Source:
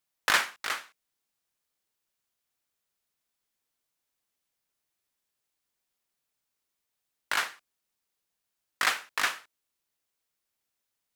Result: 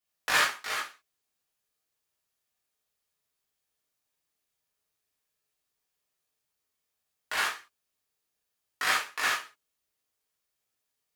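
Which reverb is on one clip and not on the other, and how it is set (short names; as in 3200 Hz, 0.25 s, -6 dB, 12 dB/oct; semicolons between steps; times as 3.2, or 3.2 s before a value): non-linear reverb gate 0.11 s flat, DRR -7.5 dB; gain -7.5 dB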